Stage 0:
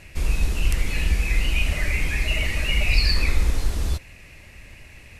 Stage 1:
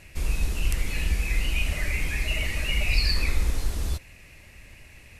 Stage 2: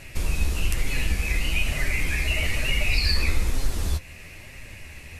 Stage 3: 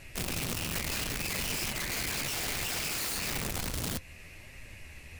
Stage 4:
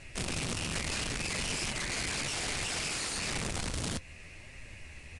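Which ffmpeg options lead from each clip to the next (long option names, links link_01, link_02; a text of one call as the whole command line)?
ffmpeg -i in.wav -af "highshelf=frequency=8600:gain=5.5,volume=-4dB" out.wav
ffmpeg -i in.wav -filter_complex "[0:a]asplit=2[link_01][link_02];[link_02]acompressor=threshold=-31dB:ratio=6,volume=2.5dB[link_03];[link_01][link_03]amix=inputs=2:normalize=0,flanger=delay=7.4:depth=6.4:regen=37:speed=1.1:shape=sinusoidal,volume=3.5dB" out.wav
ffmpeg -i in.wav -af "aeval=exprs='(mod(13.3*val(0)+1,2)-1)/13.3':channel_layout=same,volume=-6.5dB" out.wav
ffmpeg -i in.wav -af "aresample=22050,aresample=44100" out.wav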